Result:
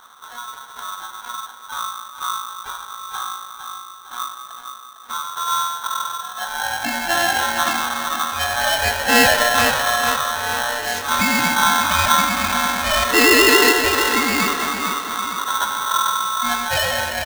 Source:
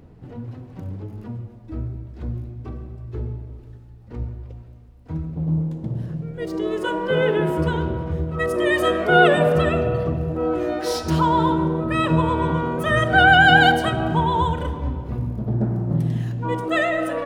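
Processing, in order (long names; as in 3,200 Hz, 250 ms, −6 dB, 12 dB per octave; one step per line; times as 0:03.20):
0:11.56–0:12.12: low-shelf EQ 380 Hz +8 dB
repeating echo 456 ms, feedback 43%, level −8 dB
ring modulator with a square carrier 1,200 Hz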